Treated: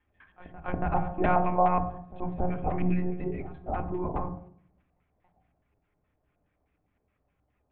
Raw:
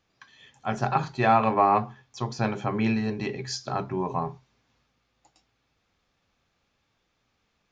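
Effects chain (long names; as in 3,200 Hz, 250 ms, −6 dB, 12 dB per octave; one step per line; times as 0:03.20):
tilt shelving filter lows +5 dB
auto-filter low-pass square 4.8 Hz 710–2,200 Hz
one-pitch LPC vocoder at 8 kHz 180 Hz
echo ahead of the sound 280 ms −17 dB
on a send at −7 dB: convolution reverb RT60 0.60 s, pre-delay 3 ms
on the sum: level −7.5 dB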